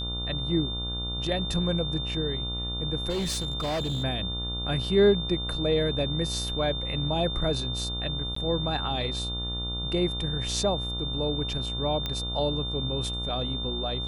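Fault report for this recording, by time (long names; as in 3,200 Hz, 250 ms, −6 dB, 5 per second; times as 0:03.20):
mains buzz 60 Hz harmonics 24 −34 dBFS
whistle 3,600 Hz −32 dBFS
0:03.09–0:04.04: clipping −25.5 dBFS
0:08.35–0:08.36: drop-out 14 ms
0:12.06: click −16 dBFS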